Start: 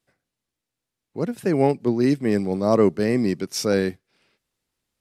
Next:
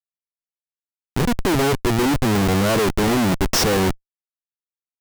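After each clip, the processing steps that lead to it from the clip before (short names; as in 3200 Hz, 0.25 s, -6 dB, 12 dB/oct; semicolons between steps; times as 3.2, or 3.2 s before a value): Schmitt trigger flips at -30.5 dBFS; gain +6 dB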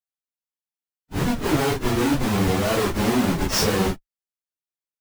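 phase scrambler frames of 0.1 s; gain -3 dB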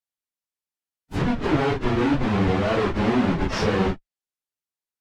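treble ducked by the level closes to 3000 Hz, closed at -19.5 dBFS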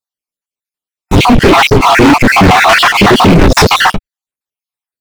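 random spectral dropouts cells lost 53%; sample leveller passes 5; maximiser +15.5 dB; gain -1 dB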